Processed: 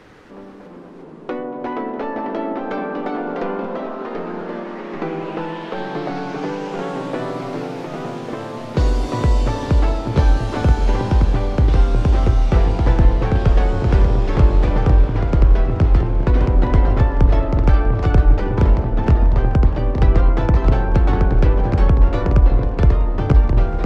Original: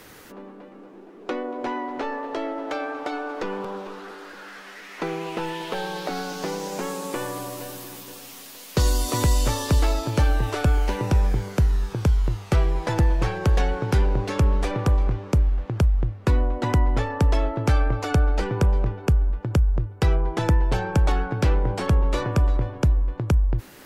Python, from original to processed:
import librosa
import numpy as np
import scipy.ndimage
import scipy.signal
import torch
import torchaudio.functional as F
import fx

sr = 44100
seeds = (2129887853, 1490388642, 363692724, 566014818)

y = fx.echo_pitch(x, sr, ms=317, semitones=-2, count=3, db_per_echo=-3.0)
y = fx.spacing_loss(y, sr, db_at_10k=23)
y = fx.echo_heads(y, sr, ms=215, heads='second and third', feedback_pct=63, wet_db=-18.0)
y = y * 10.0 ** (4.0 / 20.0)